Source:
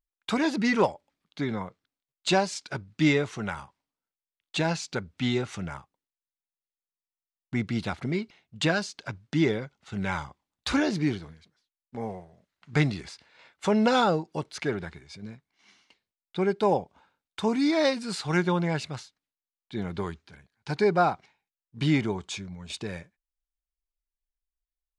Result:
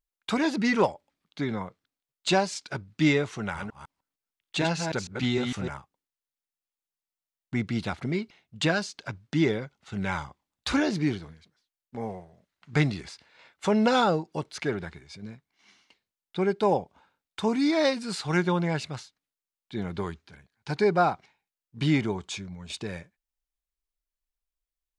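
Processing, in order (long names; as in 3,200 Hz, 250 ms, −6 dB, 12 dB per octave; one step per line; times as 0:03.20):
0:03.40–0:05.69: delay that plays each chunk backwards 152 ms, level −4.5 dB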